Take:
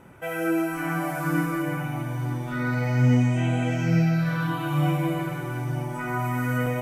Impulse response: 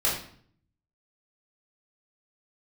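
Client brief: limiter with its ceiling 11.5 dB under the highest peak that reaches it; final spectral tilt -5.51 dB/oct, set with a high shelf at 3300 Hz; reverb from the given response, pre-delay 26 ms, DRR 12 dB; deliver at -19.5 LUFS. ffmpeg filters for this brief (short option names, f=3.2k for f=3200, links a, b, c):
-filter_complex "[0:a]highshelf=f=3.3k:g=-8.5,alimiter=limit=-22dB:level=0:latency=1,asplit=2[a][b];[1:a]atrim=start_sample=2205,adelay=26[c];[b][c]afir=irnorm=-1:irlink=0,volume=-23dB[d];[a][d]amix=inputs=2:normalize=0,volume=10.5dB"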